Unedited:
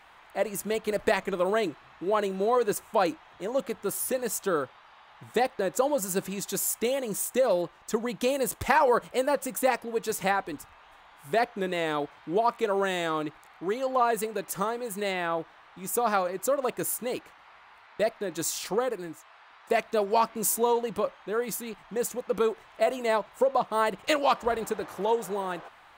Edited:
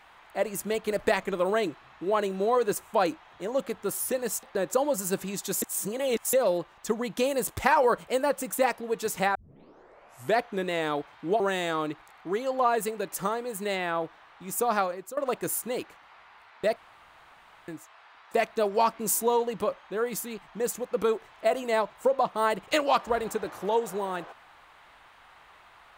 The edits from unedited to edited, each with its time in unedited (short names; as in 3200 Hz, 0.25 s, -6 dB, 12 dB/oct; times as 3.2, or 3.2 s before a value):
4.43–5.47 cut
6.66–7.37 reverse
10.39 tape start 1.01 s
12.44–12.76 cut
16.14–16.53 fade out, to -18 dB
18.12–19.04 room tone